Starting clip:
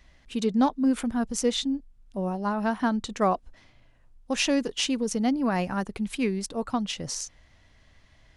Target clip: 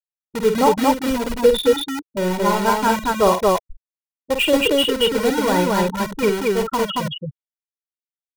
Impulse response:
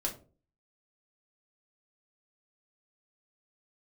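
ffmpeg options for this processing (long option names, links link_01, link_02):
-filter_complex "[0:a]afftfilt=real='re*gte(hypot(re,im),0.112)':imag='im*gte(hypot(re,im),0.112)':win_size=1024:overlap=0.75,aresample=8000,aresample=44100,asplit=2[link_01][link_02];[link_02]aeval=exprs='(mod(23.7*val(0)+1,2)-1)/23.7':channel_layout=same,volume=-7dB[link_03];[link_01][link_03]amix=inputs=2:normalize=0,aecho=1:1:2.1:0.68,aecho=1:1:49.56|227.4:0.447|0.891,volume=7.5dB"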